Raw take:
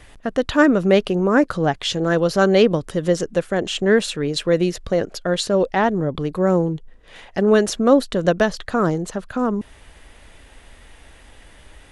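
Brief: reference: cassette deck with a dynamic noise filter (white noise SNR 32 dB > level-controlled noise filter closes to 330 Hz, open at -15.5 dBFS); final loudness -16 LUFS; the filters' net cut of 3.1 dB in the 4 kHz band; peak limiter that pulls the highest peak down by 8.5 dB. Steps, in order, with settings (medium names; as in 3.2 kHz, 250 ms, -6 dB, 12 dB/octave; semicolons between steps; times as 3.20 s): peaking EQ 4 kHz -4 dB; peak limiter -11 dBFS; white noise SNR 32 dB; level-controlled noise filter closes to 330 Hz, open at -15.5 dBFS; trim +6 dB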